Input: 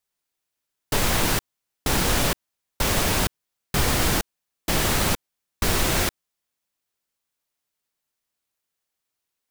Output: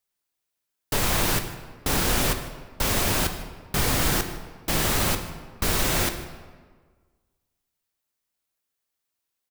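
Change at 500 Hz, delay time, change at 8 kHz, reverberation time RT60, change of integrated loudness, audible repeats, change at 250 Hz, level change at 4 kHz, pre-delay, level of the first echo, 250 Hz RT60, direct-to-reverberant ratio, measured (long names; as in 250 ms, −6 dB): −1.5 dB, 153 ms, −1.0 dB, 1.5 s, −1.0 dB, 1, −1.5 dB, −1.5 dB, 11 ms, −19.5 dB, 1.7 s, 7.0 dB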